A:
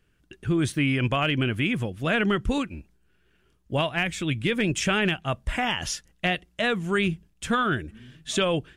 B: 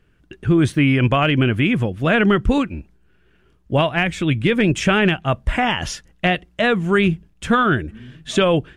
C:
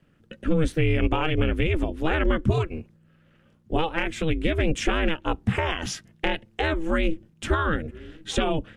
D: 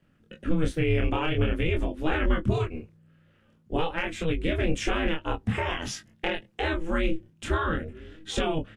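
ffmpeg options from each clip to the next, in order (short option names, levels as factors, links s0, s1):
-af "highshelf=f=3600:g=-10.5,volume=2.66"
-filter_complex "[0:a]aeval=exprs='val(0)*sin(2*PI*160*n/s)':c=same,acrossover=split=160[s0][s1];[s1]acompressor=threshold=0.0501:ratio=2[s2];[s0][s2]amix=inputs=2:normalize=0"
-filter_complex "[0:a]flanger=delay=22.5:depth=7.9:speed=0.49,asplit=2[s0][s1];[s1]adelay=19,volume=0.211[s2];[s0][s2]amix=inputs=2:normalize=0"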